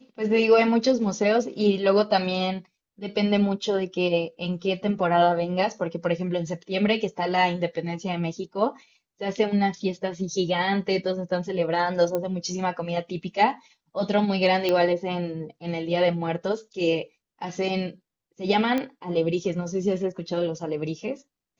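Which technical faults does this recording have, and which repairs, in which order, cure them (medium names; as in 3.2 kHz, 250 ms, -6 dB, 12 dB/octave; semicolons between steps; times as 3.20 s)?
12.15 s: pop -14 dBFS
14.69 s: pop -11 dBFS
18.78 s: pop -14 dBFS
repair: de-click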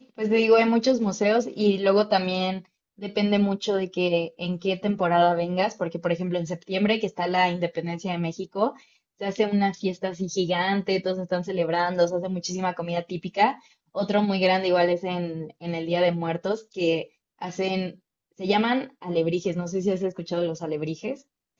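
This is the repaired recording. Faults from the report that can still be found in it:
nothing left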